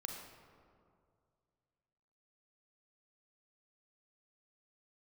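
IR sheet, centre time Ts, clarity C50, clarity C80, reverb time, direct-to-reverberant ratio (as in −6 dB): 63 ms, 2.5 dB, 4.5 dB, 2.3 s, 1.5 dB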